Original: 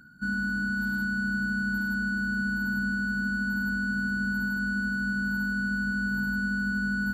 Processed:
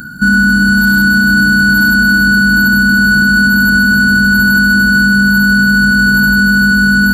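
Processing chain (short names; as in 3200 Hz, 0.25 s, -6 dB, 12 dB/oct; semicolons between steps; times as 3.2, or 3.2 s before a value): high shelf 7200 Hz +11 dB; on a send: split-band echo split 970 Hz, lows 0.424 s, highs 0.293 s, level -7 dB; on the sum: maximiser +25.5 dB; gain -1 dB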